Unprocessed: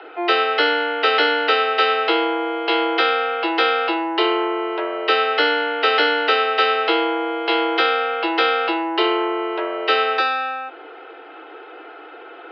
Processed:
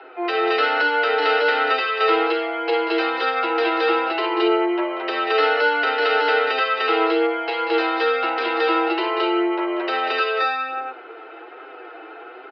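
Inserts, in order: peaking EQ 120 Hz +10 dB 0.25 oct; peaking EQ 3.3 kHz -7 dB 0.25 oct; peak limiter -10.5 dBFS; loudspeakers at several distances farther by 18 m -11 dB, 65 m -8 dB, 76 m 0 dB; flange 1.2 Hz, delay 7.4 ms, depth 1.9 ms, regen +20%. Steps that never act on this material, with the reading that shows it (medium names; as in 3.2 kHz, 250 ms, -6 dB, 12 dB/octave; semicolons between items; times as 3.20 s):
peaking EQ 120 Hz: input has nothing below 250 Hz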